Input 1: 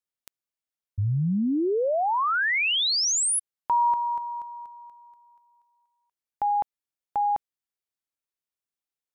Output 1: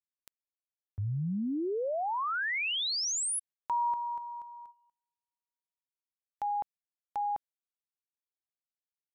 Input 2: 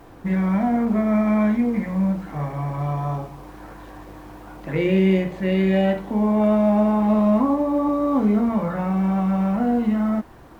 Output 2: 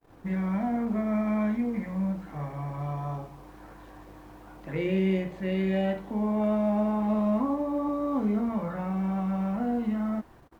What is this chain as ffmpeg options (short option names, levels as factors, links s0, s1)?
-af "agate=range=0.02:threshold=0.00708:ratio=16:release=132:detection=rms,volume=0.398"